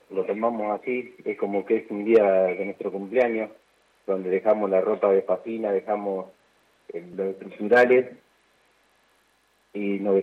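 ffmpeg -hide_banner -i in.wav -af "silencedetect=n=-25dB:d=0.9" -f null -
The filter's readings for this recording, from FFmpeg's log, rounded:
silence_start: 8.02
silence_end: 9.77 | silence_duration: 1.75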